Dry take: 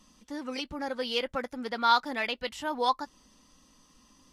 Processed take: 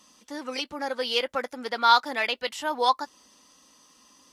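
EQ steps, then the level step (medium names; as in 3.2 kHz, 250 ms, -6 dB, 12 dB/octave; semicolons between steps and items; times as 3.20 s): high-pass 63 Hz; tone controls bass -13 dB, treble +2 dB; +4.5 dB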